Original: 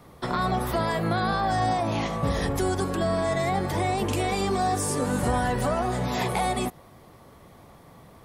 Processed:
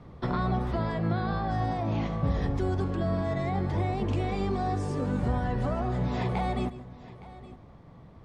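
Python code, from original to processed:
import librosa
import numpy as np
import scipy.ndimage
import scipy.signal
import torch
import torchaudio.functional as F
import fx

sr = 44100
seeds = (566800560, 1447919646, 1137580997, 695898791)

y = fx.low_shelf(x, sr, hz=260.0, db=10.5)
y = fx.rider(y, sr, range_db=10, speed_s=0.5)
y = fx.air_absorb(y, sr, metres=140.0)
y = fx.echo_multitap(y, sr, ms=(140, 865), db=(-16.5, -18.0))
y = F.gain(torch.from_numpy(y), -7.5).numpy()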